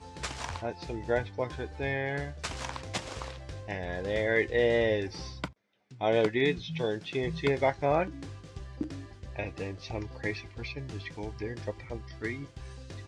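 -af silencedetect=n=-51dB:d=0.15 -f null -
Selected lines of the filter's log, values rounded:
silence_start: 5.52
silence_end: 5.91 | silence_duration: 0.38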